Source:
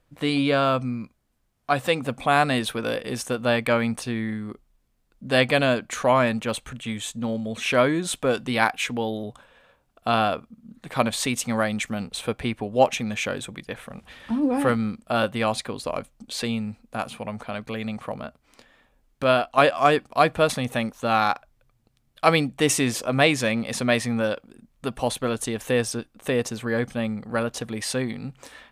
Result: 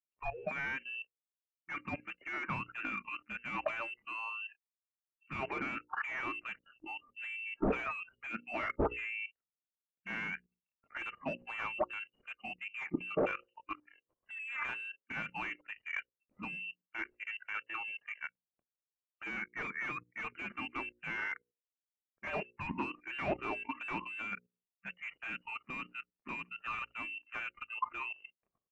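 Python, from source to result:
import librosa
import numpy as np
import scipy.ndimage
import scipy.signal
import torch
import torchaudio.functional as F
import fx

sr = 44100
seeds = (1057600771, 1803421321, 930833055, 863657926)

y = fx.leveller(x, sr, passes=2)
y = fx.transient(y, sr, attack_db=2, sustain_db=-6)
y = np.clip(10.0 ** (7.0 / 20.0) * y, -1.0, 1.0) / 10.0 ** (7.0 / 20.0)
y = fx.freq_invert(y, sr, carrier_hz=2900)
y = fx.noise_reduce_blind(y, sr, reduce_db=27)
y = 10.0 ** (-19.0 / 20.0) * np.tanh(y / 10.0 ** (-19.0 / 20.0))
y = fx.hum_notches(y, sr, base_hz=60, count=9)
y = fx.level_steps(y, sr, step_db=15)
y = fx.env_lowpass(y, sr, base_hz=550.0, full_db=-15.5)
y = F.gain(torch.from_numpy(y), 1.5).numpy()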